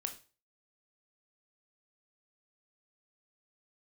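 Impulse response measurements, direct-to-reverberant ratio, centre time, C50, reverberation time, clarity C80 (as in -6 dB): 5.0 dB, 11 ms, 11.5 dB, 0.35 s, 17.5 dB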